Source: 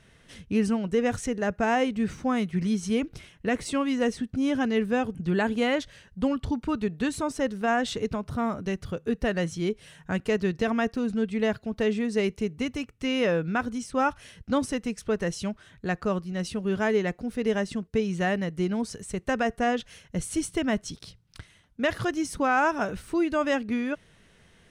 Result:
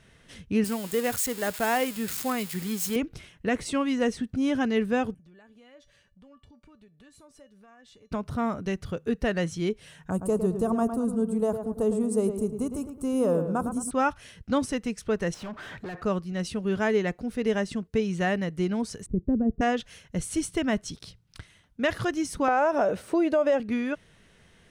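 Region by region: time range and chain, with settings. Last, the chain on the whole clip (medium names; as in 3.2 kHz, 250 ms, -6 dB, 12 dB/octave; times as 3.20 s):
0.64–2.96 s: zero-crossing glitches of -22.5 dBFS + bass shelf 220 Hz -11 dB + band-stop 5.9 kHz, Q 8.8
5.14–8.12 s: compression 4:1, threshold -42 dBFS + feedback comb 580 Hz, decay 0.19 s, mix 80%
10.10–13.91 s: FFT filter 1.2 kHz 0 dB, 1.9 kHz -25 dB, 5.9 kHz -8 dB, 8.5 kHz +13 dB + filtered feedback delay 108 ms, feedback 41%, low-pass 2.5 kHz, level -8 dB
15.34–16.03 s: compression 2:1, threshold -47 dBFS + overdrive pedal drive 34 dB, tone 1.1 kHz, clips at -28 dBFS
19.06–19.61 s: resonant low-pass 290 Hz, resonance Q 1.9 + bass shelf 120 Hz +9.5 dB
22.48–23.60 s: high-pass 120 Hz + peaking EQ 580 Hz +14 dB 1 oct + compression, threshold -19 dBFS
whole clip: none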